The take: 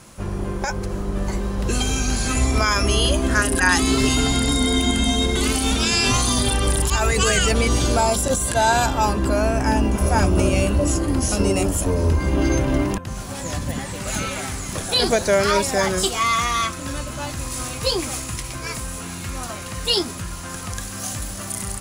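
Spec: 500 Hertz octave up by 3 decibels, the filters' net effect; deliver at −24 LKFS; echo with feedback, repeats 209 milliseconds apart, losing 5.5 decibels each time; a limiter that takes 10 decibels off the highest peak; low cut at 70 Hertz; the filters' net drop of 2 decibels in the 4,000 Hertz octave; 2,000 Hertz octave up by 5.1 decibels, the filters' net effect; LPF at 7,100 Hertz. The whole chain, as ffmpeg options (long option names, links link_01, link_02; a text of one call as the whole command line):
ffmpeg -i in.wav -af "highpass=70,lowpass=7100,equalizer=frequency=500:width_type=o:gain=3.5,equalizer=frequency=2000:width_type=o:gain=7.5,equalizer=frequency=4000:width_type=o:gain=-5,alimiter=limit=-11dB:level=0:latency=1,aecho=1:1:209|418|627|836|1045|1254|1463:0.531|0.281|0.149|0.079|0.0419|0.0222|0.0118,volume=-3.5dB" out.wav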